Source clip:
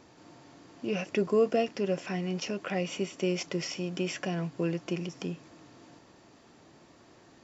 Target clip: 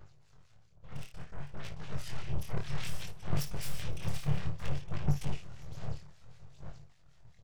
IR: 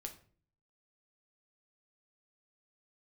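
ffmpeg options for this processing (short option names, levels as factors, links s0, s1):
-filter_complex "[0:a]aphaser=in_gain=1:out_gain=1:delay=1.6:decay=0.7:speed=1.2:type=sinusoidal,afftfilt=real='hypot(re,im)*cos(2*PI*random(0))':imag='hypot(re,im)*sin(2*PI*random(1))':win_size=512:overlap=0.75,asuperstop=centerf=1500:order=20:qfactor=4,areverse,acompressor=threshold=0.00891:ratio=16,areverse,aeval=exprs='0.0224*(cos(1*acos(clip(val(0)/0.0224,-1,1)))-cos(1*PI/2))+0.000562*(cos(2*acos(clip(val(0)/0.0224,-1,1)))-cos(2*PI/2))+0.00891*(cos(3*acos(clip(val(0)/0.0224,-1,1)))-cos(3*PI/2))+0.000158*(cos(5*acos(clip(val(0)/0.0224,-1,1)))-cos(5*PI/2))+0.00501*(cos(8*acos(clip(val(0)/0.0224,-1,1)))-cos(8*PI/2))':c=same,dynaudnorm=f=530:g=7:m=3.35,equalizer=f=1000:t=o:w=0.93:g=-2.5,asplit=2[s0][s1];[s1]aecho=0:1:56|511|625:0.355|0.119|0.106[s2];[s0][s2]amix=inputs=2:normalize=0,acrossover=split=1500[s3][s4];[s3]aeval=exprs='val(0)*(1-0.7/2+0.7/2*cos(2*PI*5.1*n/s))':c=same[s5];[s4]aeval=exprs='val(0)*(1-0.7/2-0.7/2*cos(2*PI*5.1*n/s))':c=same[s6];[s5][s6]amix=inputs=2:normalize=0,flanger=delay=20:depth=8:speed=0.59,lowshelf=f=190:t=q:w=3:g=9.5,volume=1.12"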